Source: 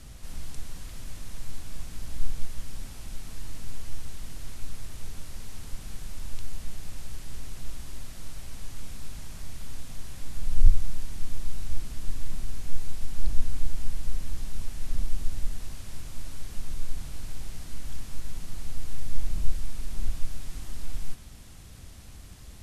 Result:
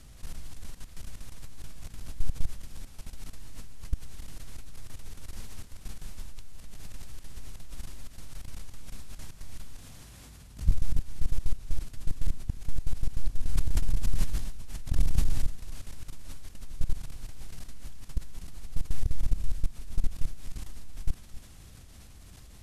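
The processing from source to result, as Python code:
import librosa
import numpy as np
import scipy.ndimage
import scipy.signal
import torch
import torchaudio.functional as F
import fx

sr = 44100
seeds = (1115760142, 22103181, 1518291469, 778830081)

y = fx.highpass(x, sr, hz=41.0, slope=24, at=(9.77, 10.69))
y = fx.level_steps(y, sr, step_db=17)
y = y + 10.0 ** (-16.0 / 20.0) * np.pad(y, (int(266 * sr / 1000.0), 0))[:len(y)]
y = fx.sustainer(y, sr, db_per_s=38.0, at=(13.53, 15.44))
y = F.gain(torch.from_numpy(y), 2.0).numpy()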